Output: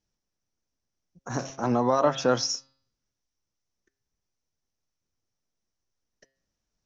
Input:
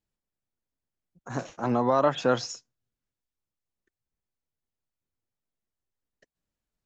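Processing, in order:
high-shelf EQ 3,100 Hz −8.5 dB
hum removal 134.3 Hz, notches 37
in parallel at −3 dB: downward compressor, threshold −37 dBFS, peak gain reduction 18 dB
on the sum: low-pass with resonance 5,800 Hz, resonance Q 7.8

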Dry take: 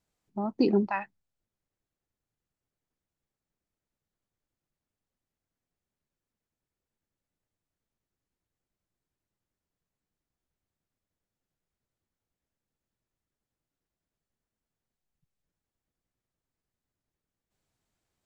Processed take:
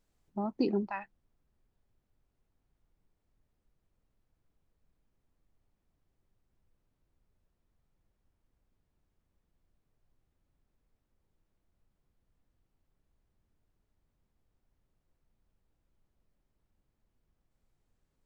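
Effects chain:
speech leveller within 4 dB 0.5 s
background noise brown −70 dBFS
level −4 dB

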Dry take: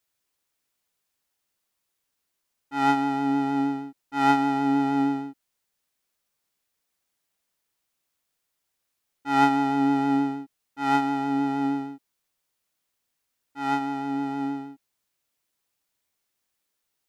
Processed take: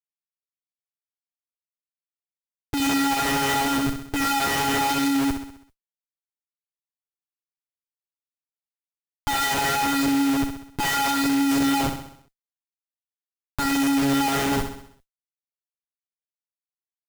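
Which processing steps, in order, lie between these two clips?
low-pass that shuts in the quiet parts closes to 500 Hz, open at −22.5 dBFS
spectral tilt +5.5 dB per octave
hum removal 165.8 Hz, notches 8
in parallel at +2 dB: compressor whose output falls as the input rises −31 dBFS, ratio −0.5
on the sum: all-pass phaser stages 12, 0.81 Hz, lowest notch 220–1,600 Hz
comparator with hysteresis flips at −33.5 dBFS
noise that follows the level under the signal 18 dB
on a send: repeating echo 65 ms, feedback 52%, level −8 dB
on the sum: level +8 dB

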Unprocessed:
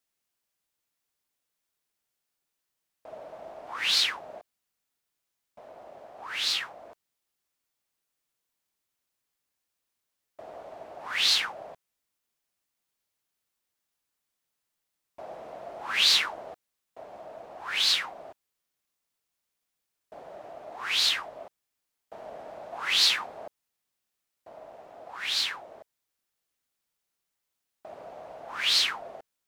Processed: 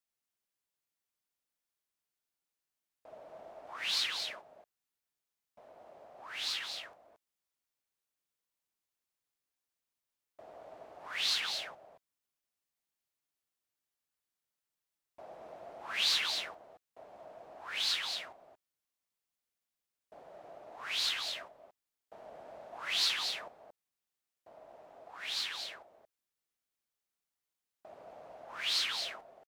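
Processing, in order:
single-tap delay 228 ms −6 dB
level −8.5 dB

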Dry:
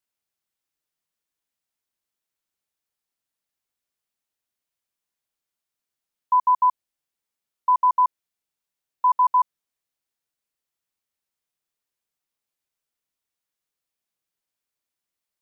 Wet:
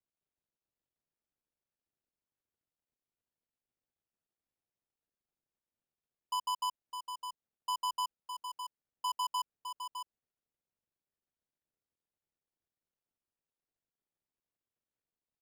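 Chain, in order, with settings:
running median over 41 samples
on a send: single-tap delay 609 ms −7.5 dB

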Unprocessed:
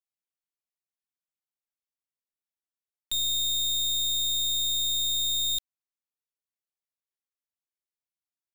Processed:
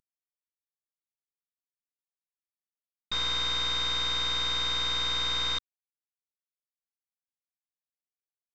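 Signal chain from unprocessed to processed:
variable-slope delta modulation 32 kbit/s

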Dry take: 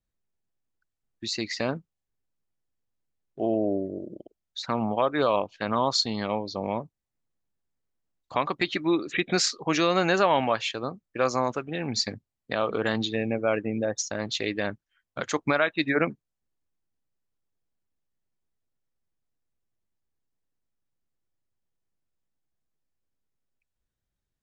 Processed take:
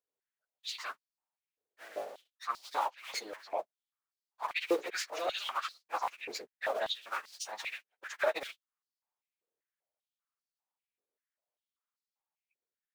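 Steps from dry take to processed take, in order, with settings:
sub-harmonics by changed cycles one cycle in 2, muted
time stretch by phase vocoder 0.53×
high-pass on a step sequencer 5.1 Hz 450–4,600 Hz
level −6 dB

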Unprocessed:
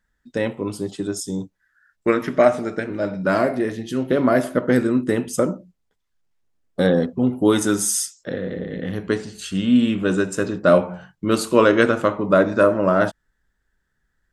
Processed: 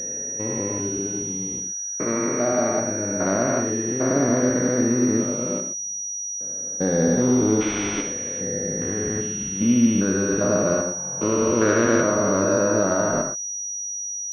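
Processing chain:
spectrum averaged block by block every 400 ms
convolution reverb, pre-delay 3 ms, DRR 4.5 dB
switching amplifier with a slow clock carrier 5,800 Hz

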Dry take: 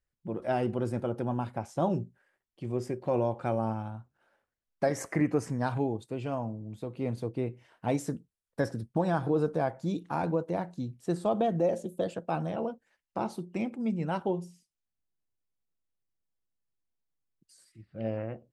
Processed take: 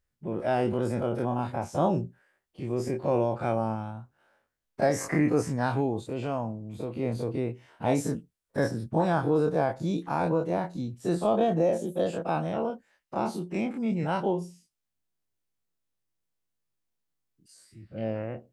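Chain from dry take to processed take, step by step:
every bin's largest magnitude spread in time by 60 ms

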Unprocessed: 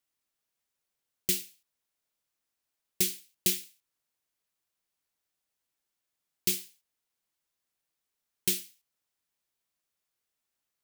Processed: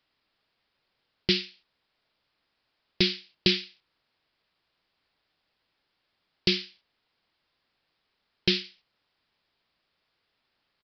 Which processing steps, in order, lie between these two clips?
in parallel at 0 dB: brickwall limiter −22 dBFS, peak gain reduction 10 dB
on the sum: downsampling to 11,025 Hz
level +7.5 dB

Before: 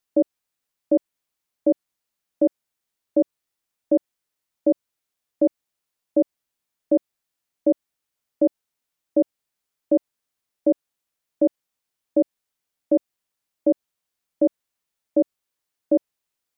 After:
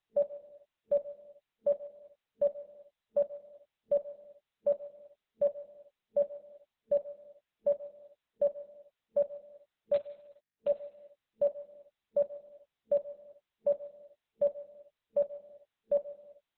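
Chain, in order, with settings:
0:09.94–0:10.68: variable-slope delta modulation 32 kbit/s
on a send at −14 dB: convolution reverb, pre-delay 3 ms
on the sum: brick-wall band-stop 220–450 Hz
level −7 dB
Opus 6 kbit/s 48,000 Hz

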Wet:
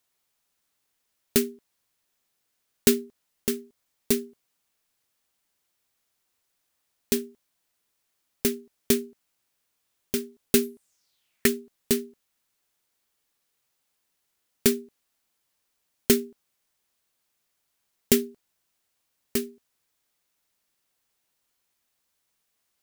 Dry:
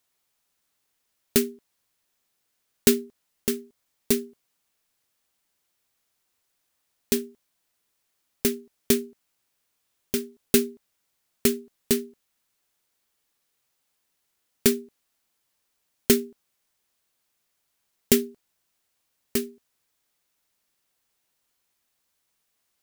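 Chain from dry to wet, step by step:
0:10.62–0:11.46: parametric band 14,000 Hz → 1,800 Hz +13.5 dB 0.67 octaves
level −1 dB

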